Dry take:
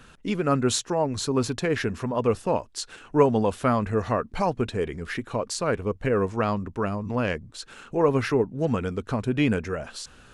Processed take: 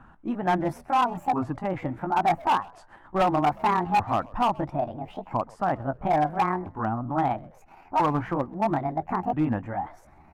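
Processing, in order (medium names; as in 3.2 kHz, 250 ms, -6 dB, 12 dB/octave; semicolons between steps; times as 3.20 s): sawtooth pitch modulation +11 st, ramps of 1333 ms; FFT filter 330 Hz 0 dB, 470 Hz -12 dB, 820 Hz +10 dB, 4.3 kHz -26 dB; overload inside the chain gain 17 dB; frequency-shifting echo 129 ms, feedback 35%, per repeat -100 Hz, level -23.5 dB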